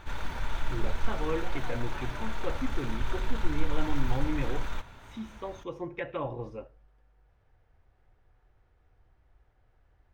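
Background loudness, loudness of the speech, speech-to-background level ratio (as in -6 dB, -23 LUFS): -37.5 LUFS, -37.5 LUFS, 0.0 dB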